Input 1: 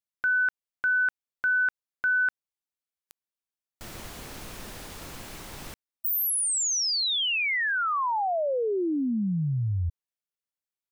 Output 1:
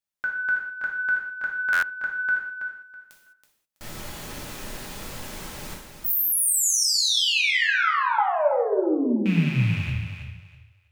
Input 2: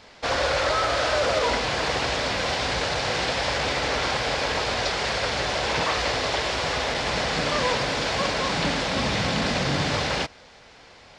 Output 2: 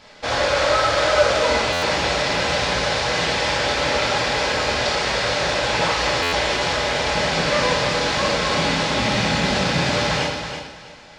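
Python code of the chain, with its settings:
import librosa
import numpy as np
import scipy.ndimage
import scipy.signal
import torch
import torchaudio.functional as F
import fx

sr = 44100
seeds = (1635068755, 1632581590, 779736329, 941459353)

p1 = fx.rattle_buzz(x, sr, strikes_db=-28.0, level_db=-25.0)
p2 = p1 + fx.echo_feedback(p1, sr, ms=326, feedback_pct=24, wet_db=-8.0, dry=0)
p3 = fx.rev_gated(p2, sr, seeds[0], gate_ms=230, shape='falling', drr_db=-1.5)
y = fx.buffer_glitch(p3, sr, at_s=(1.72, 6.22), block=512, repeats=8)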